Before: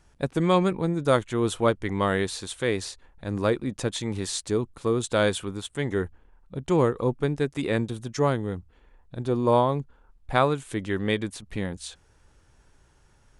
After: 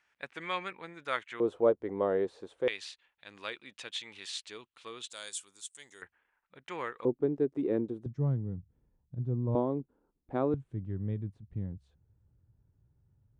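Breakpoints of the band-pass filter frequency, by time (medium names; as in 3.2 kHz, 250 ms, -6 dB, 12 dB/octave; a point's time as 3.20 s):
band-pass filter, Q 2
2.1 kHz
from 1.40 s 480 Hz
from 2.68 s 2.8 kHz
from 5.10 s 7.2 kHz
from 6.02 s 2 kHz
from 7.05 s 350 Hz
from 8.06 s 130 Hz
from 9.55 s 310 Hz
from 10.54 s 110 Hz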